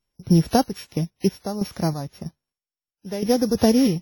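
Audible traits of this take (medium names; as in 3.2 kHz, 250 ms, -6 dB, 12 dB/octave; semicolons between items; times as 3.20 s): a buzz of ramps at a fixed pitch in blocks of 8 samples; random-step tremolo 3.1 Hz, depth 85%; WMA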